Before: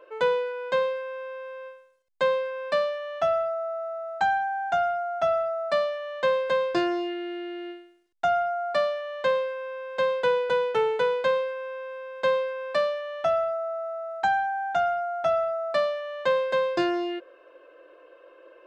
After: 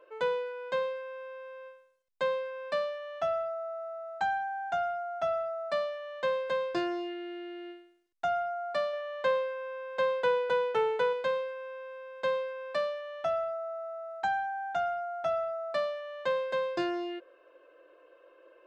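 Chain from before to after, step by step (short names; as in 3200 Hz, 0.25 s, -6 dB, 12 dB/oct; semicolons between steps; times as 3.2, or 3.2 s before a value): 8.93–11.13 bell 980 Hz +3.5 dB 2.8 oct; gain -6.5 dB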